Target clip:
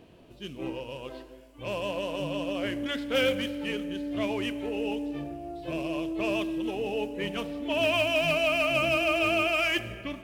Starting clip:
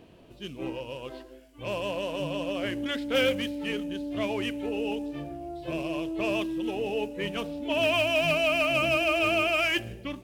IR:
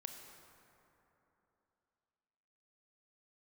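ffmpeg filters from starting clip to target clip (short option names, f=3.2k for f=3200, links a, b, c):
-filter_complex "[0:a]asplit=2[a][b];[1:a]atrim=start_sample=2205,asetrate=61740,aresample=44100[c];[b][c]afir=irnorm=-1:irlink=0,volume=1dB[d];[a][d]amix=inputs=2:normalize=0,volume=-4dB"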